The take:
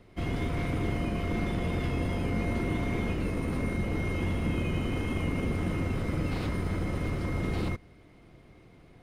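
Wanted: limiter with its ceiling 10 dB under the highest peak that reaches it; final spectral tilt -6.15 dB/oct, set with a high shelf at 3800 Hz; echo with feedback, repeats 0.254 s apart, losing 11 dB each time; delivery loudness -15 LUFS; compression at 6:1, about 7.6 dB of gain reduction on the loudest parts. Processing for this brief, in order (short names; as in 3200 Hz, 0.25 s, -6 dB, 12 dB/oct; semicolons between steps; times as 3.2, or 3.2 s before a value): high shelf 3800 Hz -4 dB; compressor 6:1, threshold -34 dBFS; limiter -35 dBFS; feedback echo 0.254 s, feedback 28%, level -11 dB; gain +28.5 dB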